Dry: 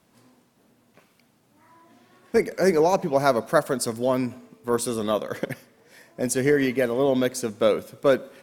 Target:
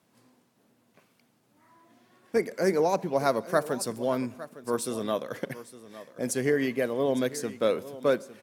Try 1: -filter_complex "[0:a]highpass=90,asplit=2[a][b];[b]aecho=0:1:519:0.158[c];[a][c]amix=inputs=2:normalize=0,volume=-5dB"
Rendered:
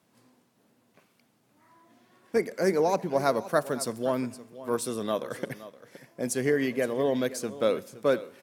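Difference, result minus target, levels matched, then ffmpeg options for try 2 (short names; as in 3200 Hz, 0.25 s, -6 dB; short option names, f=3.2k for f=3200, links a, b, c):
echo 0.339 s early
-filter_complex "[0:a]highpass=90,asplit=2[a][b];[b]aecho=0:1:858:0.158[c];[a][c]amix=inputs=2:normalize=0,volume=-5dB"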